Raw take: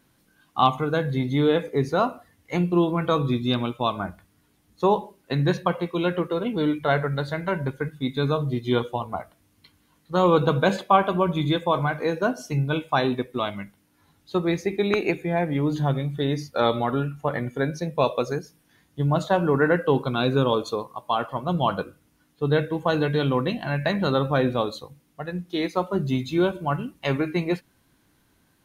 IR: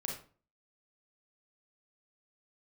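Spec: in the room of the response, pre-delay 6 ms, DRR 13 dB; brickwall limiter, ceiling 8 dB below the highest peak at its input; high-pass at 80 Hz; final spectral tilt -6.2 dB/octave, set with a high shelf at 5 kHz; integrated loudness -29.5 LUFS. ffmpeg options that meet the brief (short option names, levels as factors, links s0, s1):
-filter_complex "[0:a]highpass=80,highshelf=f=5000:g=-9,alimiter=limit=0.224:level=0:latency=1,asplit=2[s0][s1];[1:a]atrim=start_sample=2205,adelay=6[s2];[s1][s2]afir=irnorm=-1:irlink=0,volume=0.2[s3];[s0][s3]amix=inputs=2:normalize=0,volume=0.631"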